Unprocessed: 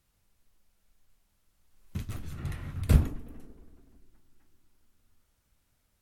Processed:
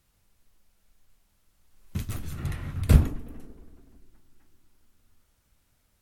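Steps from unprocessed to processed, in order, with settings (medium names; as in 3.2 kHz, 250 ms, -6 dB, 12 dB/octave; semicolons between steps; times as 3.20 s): 1.96–2.46 s: treble shelf 5.8 kHz -> 8.3 kHz +6.5 dB; trim +4 dB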